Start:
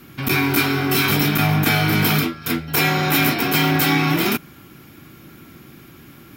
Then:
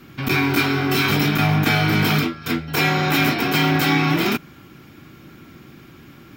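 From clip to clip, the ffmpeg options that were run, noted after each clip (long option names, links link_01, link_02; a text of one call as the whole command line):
ffmpeg -i in.wav -af "equalizer=frequency=12000:width=1.1:gain=-13" out.wav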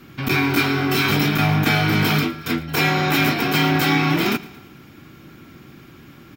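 ffmpeg -i in.wav -af "aecho=1:1:113|226|339|452:0.1|0.052|0.027|0.0141" out.wav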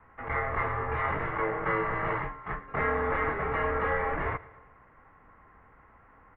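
ffmpeg -i in.wav -af "highpass=frequency=420:width_type=q:width=0.5412,highpass=frequency=420:width_type=q:width=1.307,lowpass=frequency=2100:width_type=q:width=0.5176,lowpass=frequency=2100:width_type=q:width=0.7071,lowpass=frequency=2100:width_type=q:width=1.932,afreqshift=-300,volume=-5dB" out.wav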